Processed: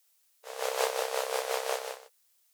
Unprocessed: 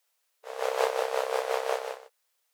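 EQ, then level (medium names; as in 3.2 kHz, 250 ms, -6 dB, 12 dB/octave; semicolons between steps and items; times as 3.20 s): treble shelf 3.3 kHz +12 dB; -4.0 dB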